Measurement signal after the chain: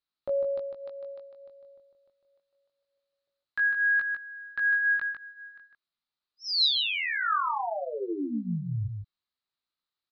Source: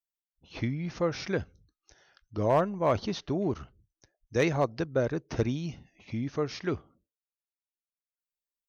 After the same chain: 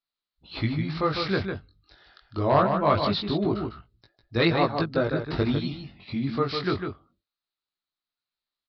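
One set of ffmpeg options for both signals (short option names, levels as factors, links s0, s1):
-filter_complex "[0:a]flanger=delay=17.5:depth=4.6:speed=0.24,equalizer=f=500:t=o:w=0.33:g=-5,equalizer=f=1250:t=o:w=0.33:g=7,equalizer=f=4000:t=o:w=0.33:g=11,asplit=2[s0][s1];[s1]adelay=151.6,volume=0.501,highshelf=f=4000:g=-3.41[s2];[s0][s2]amix=inputs=2:normalize=0,aresample=11025,aresample=44100,volume=2.24"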